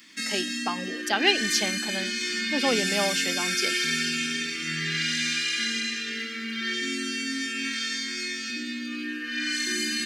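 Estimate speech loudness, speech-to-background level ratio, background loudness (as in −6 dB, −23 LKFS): −28.0 LKFS, −1.0 dB, −27.0 LKFS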